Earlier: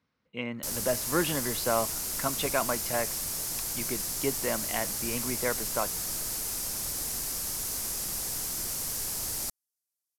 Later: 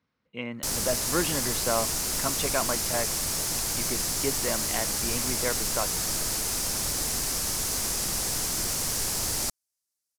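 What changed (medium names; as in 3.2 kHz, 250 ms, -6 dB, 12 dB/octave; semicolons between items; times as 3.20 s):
background +8.0 dB; master: add peaking EQ 14 kHz -9 dB 0.81 oct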